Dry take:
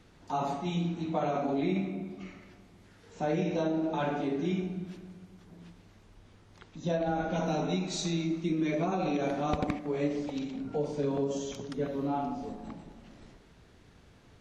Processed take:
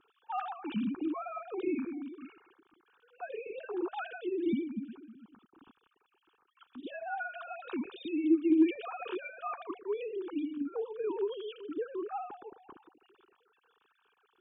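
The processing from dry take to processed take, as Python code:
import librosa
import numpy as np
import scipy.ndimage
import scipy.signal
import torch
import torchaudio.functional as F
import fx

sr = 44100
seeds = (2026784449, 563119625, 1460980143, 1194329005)

y = fx.sine_speech(x, sr)
y = fx.fixed_phaser(y, sr, hz=3000.0, stages=8)
y = fx.slew_limit(y, sr, full_power_hz=35.0)
y = y * librosa.db_to_amplitude(2.5)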